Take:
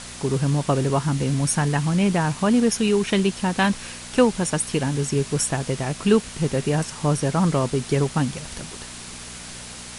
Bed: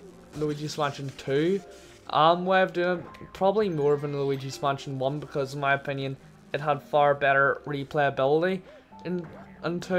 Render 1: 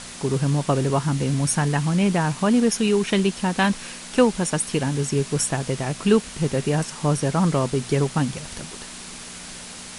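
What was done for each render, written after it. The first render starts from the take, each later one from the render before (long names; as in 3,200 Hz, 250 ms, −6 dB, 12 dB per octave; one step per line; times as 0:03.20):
hum removal 60 Hz, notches 2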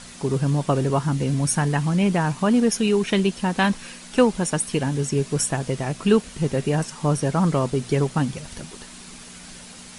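broadband denoise 6 dB, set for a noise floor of −38 dBFS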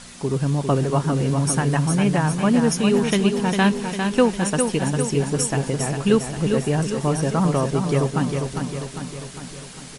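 on a send: repeating echo 402 ms, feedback 56%, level −6 dB
on the sum: feedback echo with a swinging delay time 235 ms, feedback 47%, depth 148 cents, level −23.5 dB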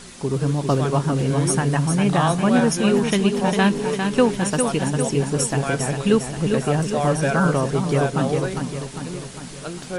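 mix in bed −3 dB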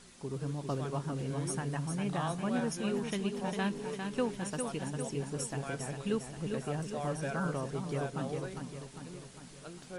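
level −15.5 dB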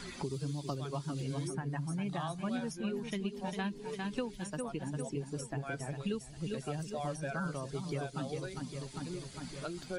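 spectral dynamics exaggerated over time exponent 1.5
multiband upward and downward compressor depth 100%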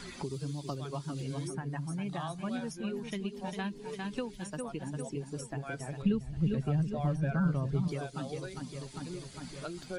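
0:06.02–0:07.88: bass and treble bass +13 dB, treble −12 dB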